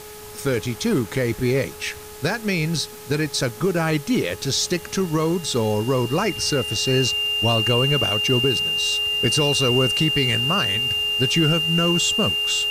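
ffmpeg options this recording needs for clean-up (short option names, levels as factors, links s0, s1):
-af "adeclick=t=4,bandreject=f=422:t=h:w=4,bandreject=f=844:t=h:w=4,bandreject=f=1266:t=h:w=4,bandreject=f=1688:t=h:w=4,bandreject=f=2800:w=30,afwtdn=0.0089"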